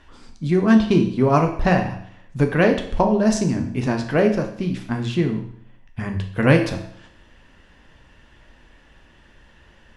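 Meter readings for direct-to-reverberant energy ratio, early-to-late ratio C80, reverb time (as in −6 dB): 3.5 dB, 11.5 dB, 0.65 s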